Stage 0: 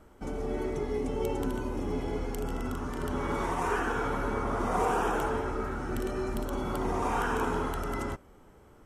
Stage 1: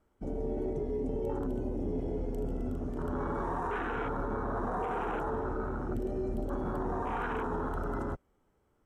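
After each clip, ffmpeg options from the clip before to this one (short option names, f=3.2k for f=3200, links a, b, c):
-af "afwtdn=0.0224,alimiter=level_in=2dB:limit=-24dB:level=0:latency=1:release=10,volume=-2dB"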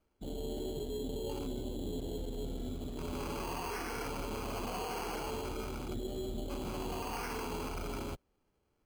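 -af "acrusher=samples=12:mix=1:aa=0.000001,volume=-5dB"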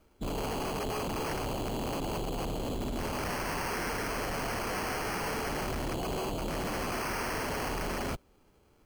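-af "aeval=exprs='0.0299*sin(PI/2*2.82*val(0)/0.0299)':c=same"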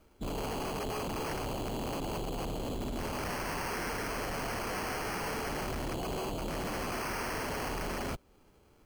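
-af "alimiter=level_in=10dB:limit=-24dB:level=0:latency=1:release=209,volume=-10dB,volume=1.5dB"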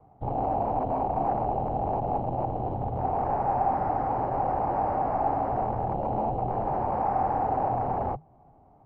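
-af "acrusher=bits=5:mode=log:mix=0:aa=0.000001,afreqshift=-160,lowpass=f=790:t=q:w=7.3,volume=2.5dB"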